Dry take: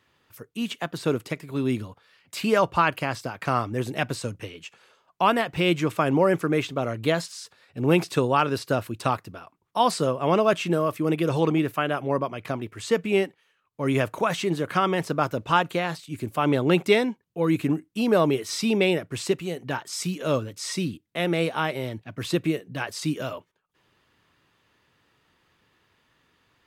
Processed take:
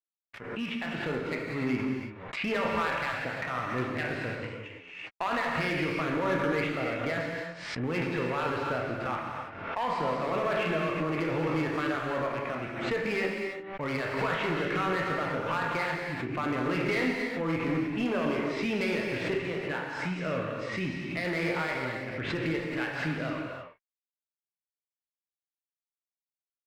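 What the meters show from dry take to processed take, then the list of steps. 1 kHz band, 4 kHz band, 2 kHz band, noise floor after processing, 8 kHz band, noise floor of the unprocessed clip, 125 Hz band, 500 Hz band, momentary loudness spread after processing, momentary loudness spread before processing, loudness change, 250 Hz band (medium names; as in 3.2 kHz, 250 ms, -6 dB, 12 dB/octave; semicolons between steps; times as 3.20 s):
-6.0 dB, -7.0 dB, -0.5 dB, under -85 dBFS, -14.5 dB, -69 dBFS, -6.5 dB, -7.0 dB, 7 LU, 11 LU, -5.5 dB, -6.0 dB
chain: spectral sustain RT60 0.30 s; de-hum 194.4 Hz, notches 30; peak limiter -15.5 dBFS, peak gain reduction 9.5 dB; crossover distortion -43 dBFS; resonant low-pass 2.1 kHz, resonance Q 2.7; one-sided clip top -22 dBFS; gated-style reverb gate 360 ms flat, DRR 0 dB; swell ahead of each attack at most 54 dB/s; trim -5.5 dB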